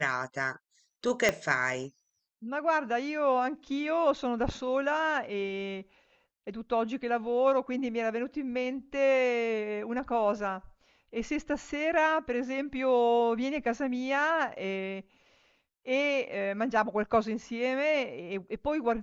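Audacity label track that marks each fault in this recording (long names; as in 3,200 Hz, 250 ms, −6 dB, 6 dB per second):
1.290000	1.290000	click −11 dBFS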